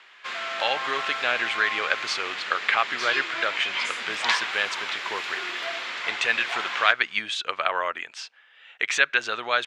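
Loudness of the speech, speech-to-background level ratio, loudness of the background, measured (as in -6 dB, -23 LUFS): -26.0 LUFS, 3.0 dB, -29.0 LUFS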